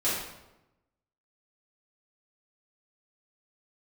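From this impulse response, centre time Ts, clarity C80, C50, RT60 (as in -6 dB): 65 ms, 4.0 dB, 0.5 dB, 0.95 s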